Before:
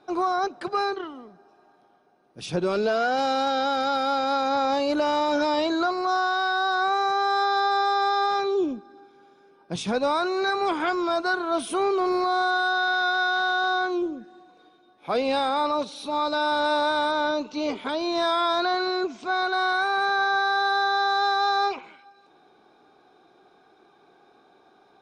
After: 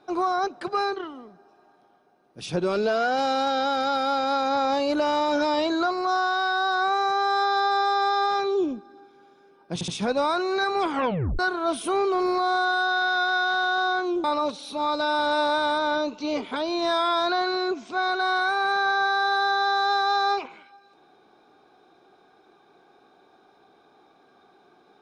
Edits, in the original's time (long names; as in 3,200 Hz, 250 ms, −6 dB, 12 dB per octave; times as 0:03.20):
0:09.74: stutter 0.07 s, 3 plays
0:10.77: tape stop 0.48 s
0:14.10–0:15.57: remove